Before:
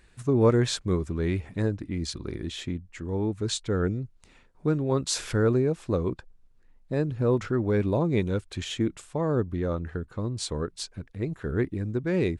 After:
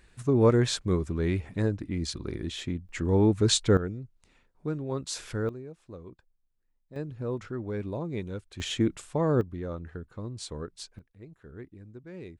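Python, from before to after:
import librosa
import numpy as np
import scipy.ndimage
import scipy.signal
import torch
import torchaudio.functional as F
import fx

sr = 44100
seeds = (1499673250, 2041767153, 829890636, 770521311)

y = fx.gain(x, sr, db=fx.steps((0.0, -0.5), (2.89, 6.0), (3.77, -7.0), (5.49, -18.0), (6.96, -9.0), (8.6, 1.0), (9.41, -7.0), (10.99, -17.5)))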